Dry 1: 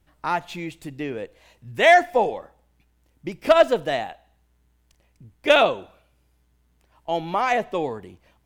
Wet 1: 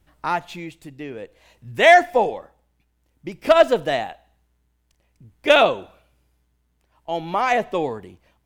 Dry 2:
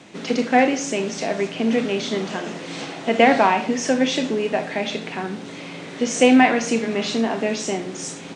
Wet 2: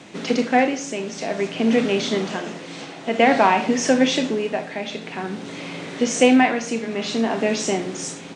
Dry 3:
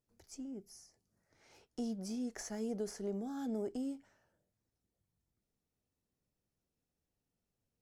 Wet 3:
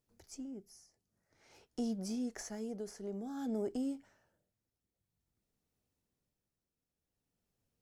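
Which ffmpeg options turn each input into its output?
ffmpeg -i in.wav -af "tremolo=f=0.52:d=0.53,volume=2.5dB" out.wav

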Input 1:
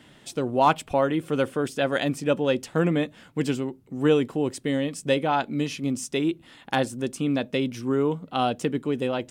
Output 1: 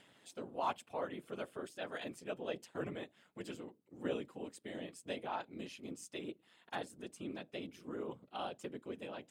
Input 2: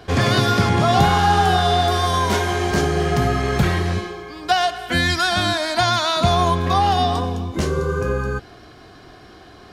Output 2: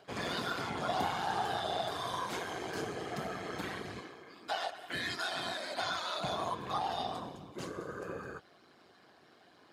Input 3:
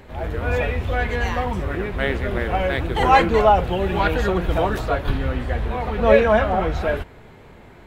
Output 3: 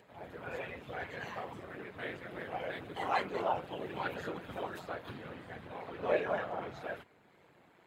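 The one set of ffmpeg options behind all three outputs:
ffmpeg -i in.wav -af "lowshelf=frequency=270:gain=-7.5,bandreject=frequency=5700:width=14,afftfilt=real='hypot(re,im)*cos(2*PI*random(0))':imag='hypot(re,im)*sin(2*PI*random(1))':win_size=512:overlap=0.75,acompressor=mode=upward:threshold=-47dB:ratio=2.5,tremolo=f=180:d=0.462,highpass=120,volume=-8.5dB" out.wav

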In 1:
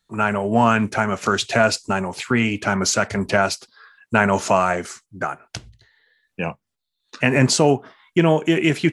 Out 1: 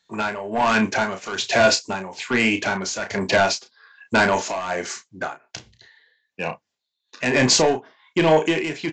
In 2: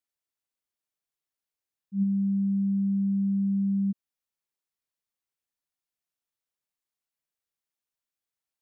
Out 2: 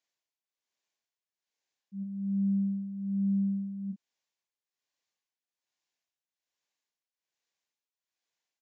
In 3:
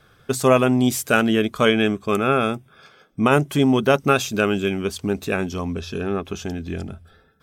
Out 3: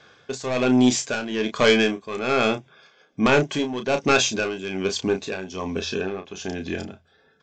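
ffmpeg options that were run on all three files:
ffmpeg -i in.wav -filter_complex "[0:a]highpass=frequency=410:poles=1,aresample=16000,asoftclip=type=tanh:threshold=-17dB,aresample=44100,tremolo=f=1.2:d=0.74,bandreject=frequency=1300:width=6.4,asplit=2[link_01][link_02];[link_02]adelay=32,volume=-8dB[link_03];[link_01][link_03]amix=inputs=2:normalize=0,volume=6.5dB" out.wav

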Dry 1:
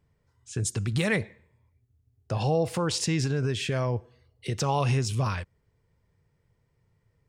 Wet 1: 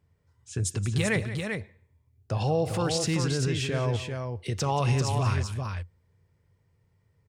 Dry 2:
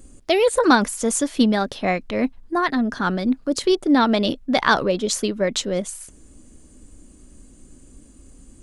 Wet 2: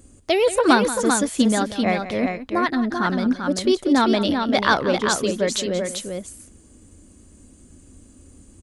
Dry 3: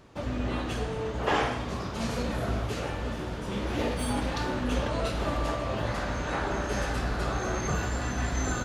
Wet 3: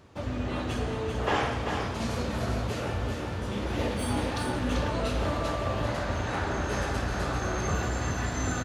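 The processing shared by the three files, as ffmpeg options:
ffmpeg -i in.wav -filter_complex "[0:a]highpass=frequency=48:poles=1,equalizer=frequency=88:width=4.1:gain=9.5,asplit=2[link_01][link_02];[link_02]aecho=0:1:179|391:0.2|0.531[link_03];[link_01][link_03]amix=inputs=2:normalize=0,volume=-1dB" out.wav

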